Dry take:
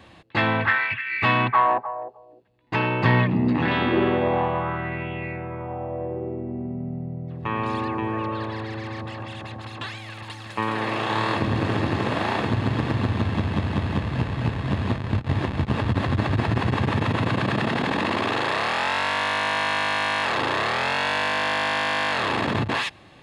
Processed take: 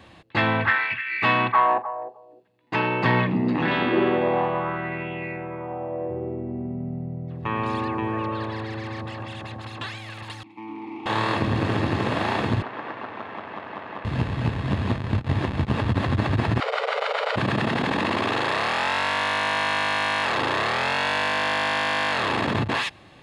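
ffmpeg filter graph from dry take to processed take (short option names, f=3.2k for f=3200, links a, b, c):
-filter_complex "[0:a]asettb=1/sr,asplit=3[a][b][c];[a]atrim=end=0.704[d];[b]atrim=start=0.7:end=6.1,asetpts=PTS-STARTPTS,afade=t=in:d=0.004:c=qsin,afade=t=out:st=5.396:d=0.004:c=qsin,highpass=150,asplit=2[e][f];[f]adelay=43,volume=-14dB[g];[e][g]amix=inputs=2:normalize=0,atrim=end_sample=238140[h];[c]atrim=start=6.096[i];[d][h]acrossfade=d=0.004:c1=hsin:c2=qsin[j];[j][i]acrossfade=d=0.004:c1=qsin:c2=hsin,asettb=1/sr,asplit=3[k][l][m];[k]atrim=end=10.434[n];[l]atrim=start=10.43:end=11.06,asetpts=PTS-STARTPTS,afade=t=in:d=0.004:c=qsin,afade=t=out:st=0.626:d=0.004:c=qsin,equalizer=f=240:t=o:w=1.9:g=6,asoftclip=type=hard:threshold=-22dB,asplit=3[o][p][q];[o]bandpass=f=300:t=q:w=8,volume=0dB[r];[p]bandpass=f=870:t=q:w=8,volume=-6dB[s];[q]bandpass=f=2.24k:t=q:w=8,volume=-9dB[t];[r][s][t]amix=inputs=3:normalize=0[u];[m]atrim=start=11.056[v];[n][u]acrossfade=d=0.004:c1=hsin:c2=qsin[w];[w][v]acrossfade=d=0.004:c1=qsin:c2=hsin,asettb=1/sr,asplit=3[x][y][z];[x]atrim=end=12.624[aa];[y]atrim=start=12.62:end=14.05,asetpts=PTS-STARTPTS,afade=t=in:d=0.004:c=qsin,afade=t=out:st=1.426:d=0.004:c=qsin,volume=20dB,asoftclip=hard,volume=-20dB,highpass=550,lowpass=2k[ab];[z]atrim=start=14.046[ac];[aa][ab]acrossfade=d=0.004:c1=hsin:c2=qsin[ad];[ad][ac]acrossfade=d=0.004:c1=qsin:c2=hsin,asettb=1/sr,asplit=3[ae][af][ag];[ae]atrim=end=16.604[ah];[af]atrim=start=16.6:end=17.36,asetpts=PTS-STARTPTS,afade=t=in:d=0.004:c=qsin,afade=t=out:st=0.756:d=0.004:c=qsin,highpass=200,lowpass=7.2k,aeval=exprs='val(0)+0.00282*(sin(2*PI*60*n/s)+sin(2*PI*2*60*n/s)/2+sin(2*PI*3*60*n/s)/3+sin(2*PI*4*60*n/s)/4+sin(2*PI*5*60*n/s)/5)':c=same,afreqshift=330[ai];[ag]atrim=start=17.356[aj];[ah][ai]acrossfade=d=0.004:c1=hsin:c2=qsin[ak];[ak][aj]acrossfade=d=0.004:c1=qsin:c2=hsin"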